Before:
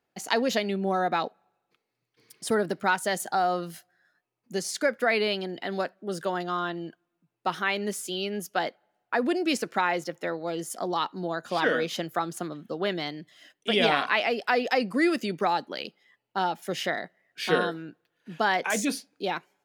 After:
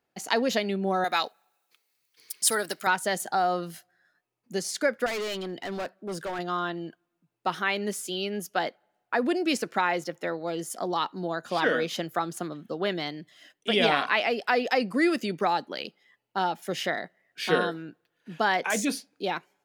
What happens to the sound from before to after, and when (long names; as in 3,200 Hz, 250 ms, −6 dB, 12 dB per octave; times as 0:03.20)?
0:01.04–0:02.87: spectral tilt +4.5 dB per octave
0:05.06–0:06.39: hard clipping −29 dBFS